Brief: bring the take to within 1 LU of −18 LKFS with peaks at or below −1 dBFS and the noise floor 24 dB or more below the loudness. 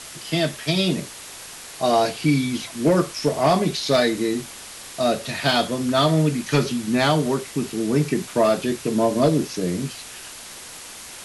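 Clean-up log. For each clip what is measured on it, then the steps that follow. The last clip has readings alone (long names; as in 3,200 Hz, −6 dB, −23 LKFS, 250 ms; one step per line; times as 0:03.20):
share of clipped samples 0.5%; peaks flattened at −10.0 dBFS; background noise floor −39 dBFS; target noise floor −46 dBFS; integrated loudness −21.5 LKFS; sample peak −10.0 dBFS; target loudness −18.0 LKFS
→ clipped peaks rebuilt −10 dBFS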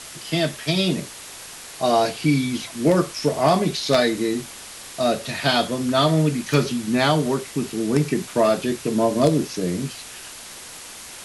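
share of clipped samples 0.0%; background noise floor −39 dBFS; target noise floor −46 dBFS
→ broadband denoise 7 dB, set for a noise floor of −39 dBFS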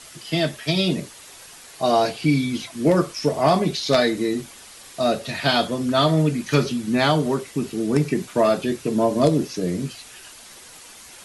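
background noise floor −44 dBFS; target noise floor −46 dBFS
→ broadband denoise 6 dB, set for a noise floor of −44 dBFS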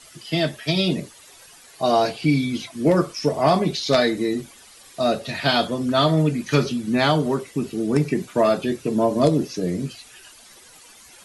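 background noise floor −48 dBFS; integrated loudness −21.5 LKFS; sample peak −1.0 dBFS; target loudness −18.0 LKFS
→ level +3.5 dB
brickwall limiter −1 dBFS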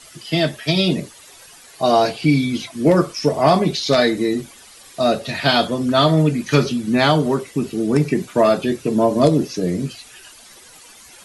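integrated loudness −18.0 LKFS; sample peak −1.0 dBFS; background noise floor −44 dBFS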